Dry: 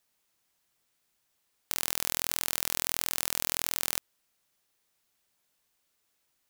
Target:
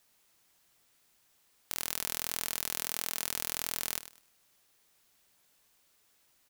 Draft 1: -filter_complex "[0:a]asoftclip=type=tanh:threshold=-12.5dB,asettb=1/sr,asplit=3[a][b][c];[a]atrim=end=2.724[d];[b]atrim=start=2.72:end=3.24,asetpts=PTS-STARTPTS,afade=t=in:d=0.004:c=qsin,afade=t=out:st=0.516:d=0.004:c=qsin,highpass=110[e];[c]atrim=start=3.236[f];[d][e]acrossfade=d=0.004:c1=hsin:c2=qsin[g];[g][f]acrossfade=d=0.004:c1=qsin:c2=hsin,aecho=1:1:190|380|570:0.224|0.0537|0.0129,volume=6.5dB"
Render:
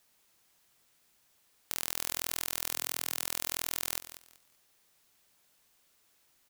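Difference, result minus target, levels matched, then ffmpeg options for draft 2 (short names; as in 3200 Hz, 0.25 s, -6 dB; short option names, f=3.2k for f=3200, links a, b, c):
echo 89 ms late
-filter_complex "[0:a]asoftclip=type=tanh:threshold=-12.5dB,asettb=1/sr,asplit=3[a][b][c];[a]atrim=end=2.724[d];[b]atrim=start=2.72:end=3.24,asetpts=PTS-STARTPTS,afade=t=in:d=0.004:c=qsin,afade=t=out:st=0.516:d=0.004:c=qsin,highpass=110[e];[c]atrim=start=3.236[f];[d][e]acrossfade=d=0.004:c1=hsin:c2=qsin[g];[g][f]acrossfade=d=0.004:c1=qsin:c2=hsin,aecho=1:1:101|202|303:0.224|0.0537|0.0129,volume=6.5dB"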